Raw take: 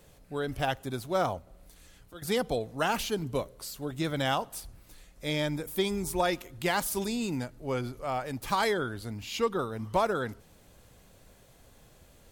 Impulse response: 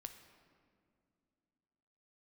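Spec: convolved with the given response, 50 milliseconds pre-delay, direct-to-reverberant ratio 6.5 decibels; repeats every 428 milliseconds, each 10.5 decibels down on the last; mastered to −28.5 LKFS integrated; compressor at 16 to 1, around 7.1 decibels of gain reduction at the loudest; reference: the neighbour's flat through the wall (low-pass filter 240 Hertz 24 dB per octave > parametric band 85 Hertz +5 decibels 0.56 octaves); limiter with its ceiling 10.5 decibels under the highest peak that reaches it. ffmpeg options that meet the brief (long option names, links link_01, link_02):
-filter_complex "[0:a]acompressor=threshold=-29dB:ratio=16,alimiter=level_in=4.5dB:limit=-24dB:level=0:latency=1,volume=-4.5dB,aecho=1:1:428|856|1284:0.299|0.0896|0.0269,asplit=2[link_01][link_02];[1:a]atrim=start_sample=2205,adelay=50[link_03];[link_02][link_03]afir=irnorm=-1:irlink=0,volume=-1.5dB[link_04];[link_01][link_04]amix=inputs=2:normalize=0,lowpass=frequency=240:width=0.5412,lowpass=frequency=240:width=1.3066,equalizer=frequency=85:width_type=o:width=0.56:gain=5,volume=15dB"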